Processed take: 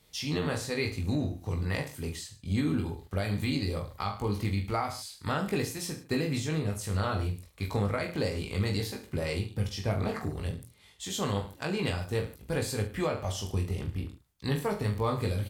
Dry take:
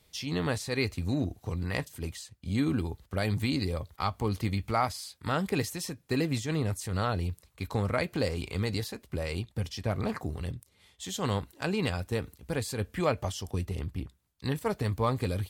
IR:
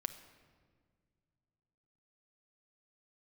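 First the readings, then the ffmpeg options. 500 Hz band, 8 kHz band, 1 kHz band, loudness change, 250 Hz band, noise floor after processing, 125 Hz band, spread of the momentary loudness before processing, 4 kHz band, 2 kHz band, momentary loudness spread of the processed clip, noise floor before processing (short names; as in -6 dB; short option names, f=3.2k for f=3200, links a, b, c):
0.0 dB, +1.0 dB, -1.5 dB, 0.0 dB, -0.5 dB, -57 dBFS, +0.5 dB, 8 LU, +0.5 dB, -0.5 dB, 6 LU, -67 dBFS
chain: -af "aecho=1:1:20|44|72.8|107.4|148.8:0.631|0.398|0.251|0.158|0.1,alimiter=limit=-19.5dB:level=0:latency=1:release=359"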